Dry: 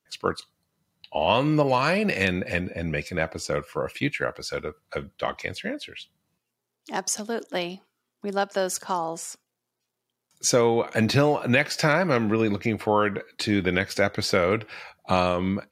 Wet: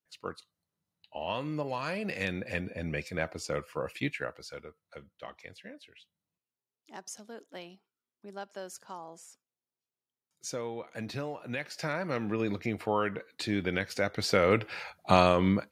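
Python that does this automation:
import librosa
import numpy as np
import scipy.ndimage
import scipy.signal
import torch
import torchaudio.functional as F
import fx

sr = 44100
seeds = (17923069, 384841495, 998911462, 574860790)

y = fx.gain(x, sr, db=fx.line((1.75, -13.0), (2.7, -6.5), (4.06, -6.5), (4.79, -16.5), (11.41, -16.5), (12.49, -7.5), (14.05, -7.5), (14.63, 0.0)))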